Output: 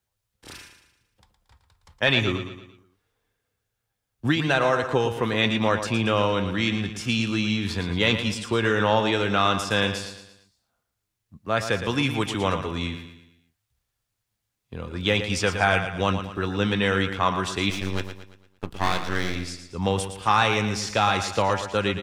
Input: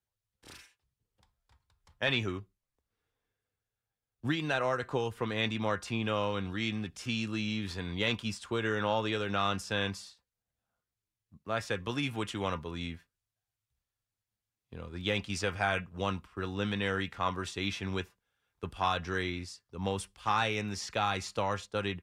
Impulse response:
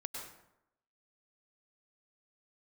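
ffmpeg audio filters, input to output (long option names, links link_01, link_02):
-filter_complex "[0:a]asettb=1/sr,asplit=3[link_01][link_02][link_03];[link_01]atrim=end=17.704[link_04];[link_02]atrim=start=17.7:end=19.36,asetpts=PTS-STARTPTS,afade=type=in:duration=0.004:curve=qsin,afade=type=out:start_time=1.656:duration=0.004:curve=qsin,aeval=exprs='max(val(0),0)':channel_layout=same[link_05];[link_03]atrim=start=19.356[link_06];[link_04][link_05]acrossfade=duration=0.004:curve1=hsin:curve2=qsin[link_07];[link_07][link_06]acrossfade=duration=0.004:curve1=qsin:curve2=hsin,aecho=1:1:114|228|342|456|570:0.335|0.147|0.0648|0.0285|0.0126,volume=9dB"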